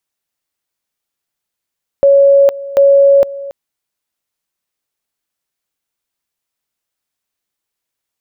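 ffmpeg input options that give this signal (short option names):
-f lavfi -i "aevalsrc='pow(10,(-4-18*gte(mod(t,0.74),0.46))/20)*sin(2*PI*557*t)':d=1.48:s=44100"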